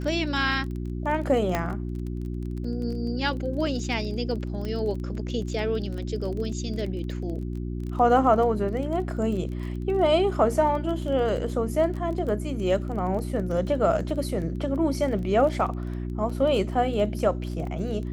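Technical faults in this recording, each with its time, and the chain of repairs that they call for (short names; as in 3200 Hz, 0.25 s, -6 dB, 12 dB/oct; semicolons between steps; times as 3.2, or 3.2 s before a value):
crackle 23/s -33 dBFS
hum 60 Hz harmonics 6 -31 dBFS
1.55 pop -11 dBFS
4.65 pop -21 dBFS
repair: de-click; de-hum 60 Hz, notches 6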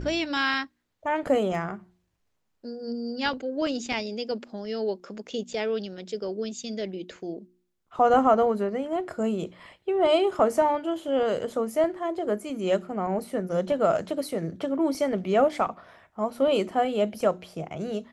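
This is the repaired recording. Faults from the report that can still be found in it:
1.55 pop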